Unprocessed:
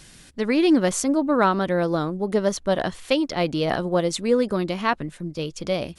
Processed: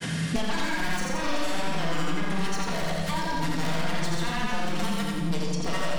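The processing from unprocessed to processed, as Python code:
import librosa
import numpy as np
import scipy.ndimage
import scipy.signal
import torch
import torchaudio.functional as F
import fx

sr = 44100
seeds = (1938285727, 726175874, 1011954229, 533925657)

p1 = scipy.signal.sosfilt(scipy.signal.butter(4, 120.0, 'highpass', fs=sr, output='sos'), x)
p2 = fx.high_shelf(p1, sr, hz=9500.0, db=-5.5)
p3 = fx.level_steps(p2, sr, step_db=13)
p4 = p2 + (p3 * 10.0 ** (-0.5 / 20.0))
p5 = 10.0 ** (-23.0 / 20.0) * (np.abs((p4 / 10.0 ** (-23.0 / 20.0) + 3.0) % 4.0 - 2.0) - 1.0)
p6 = fx.granulator(p5, sr, seeds[0], grain_ms=100.0, per_s=20.0, spray_ms=100.0, spread_st=0)
p7 = p6 + fx.echo_feedback(p6, sr, ms=86, feedback_pct=39, wet_db=-4, dry=0)
p8 = fx.room_shoebox(p7, sr, seeds[1], volume_m3=620.0, walls='mixed', distance_m=1.7)
p9 = fx.band_squash(p8, sr, depth_pct=100)
y = p9 * 10.0 ** (-7.0 / 20.0)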